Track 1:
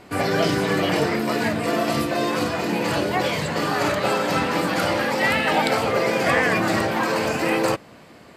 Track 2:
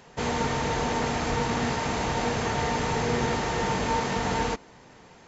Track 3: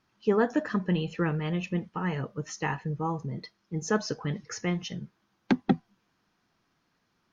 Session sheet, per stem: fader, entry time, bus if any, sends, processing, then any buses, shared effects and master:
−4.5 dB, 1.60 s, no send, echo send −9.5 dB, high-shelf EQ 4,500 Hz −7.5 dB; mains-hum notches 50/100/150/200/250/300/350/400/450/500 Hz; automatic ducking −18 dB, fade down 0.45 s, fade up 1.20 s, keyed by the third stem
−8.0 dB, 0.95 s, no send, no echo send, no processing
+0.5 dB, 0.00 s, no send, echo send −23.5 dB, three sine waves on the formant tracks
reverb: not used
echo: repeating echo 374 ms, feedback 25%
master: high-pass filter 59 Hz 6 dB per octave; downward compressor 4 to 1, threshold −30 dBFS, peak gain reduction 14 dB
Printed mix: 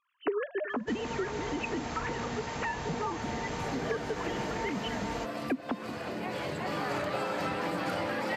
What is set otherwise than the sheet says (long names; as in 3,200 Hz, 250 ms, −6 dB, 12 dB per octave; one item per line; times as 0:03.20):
stem 1: entry 1.60 s → 3.10 s
stem 2: entry 0.95 s → 0.70 s
master: missing high-pass filter 59 Hz 6 dB per octave